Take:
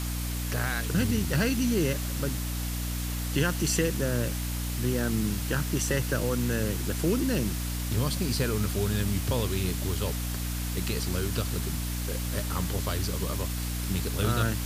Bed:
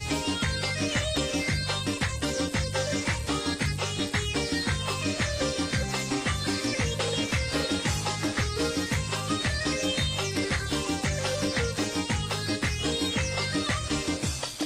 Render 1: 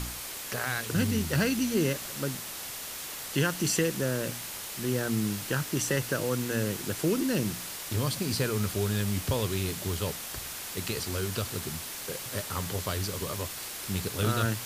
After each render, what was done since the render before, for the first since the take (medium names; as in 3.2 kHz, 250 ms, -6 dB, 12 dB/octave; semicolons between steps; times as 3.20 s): de-hum 60 Hz, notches 5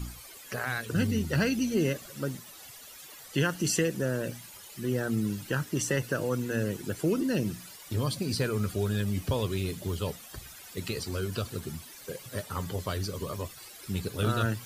noise reduction 14 dB, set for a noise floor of -39 dBFS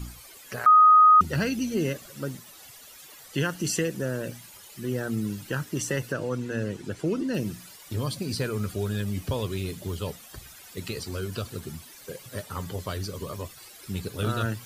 0.66–1.21 s: bleep 1.25 kHz -11.5 dBFS; 6.12–7.34 s: distance through air 54 m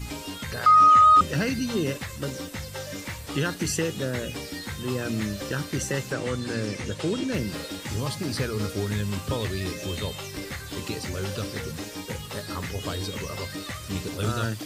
add bed -7.5 dB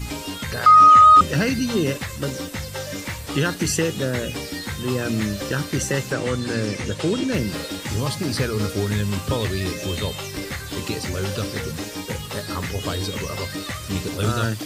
trim +5 dB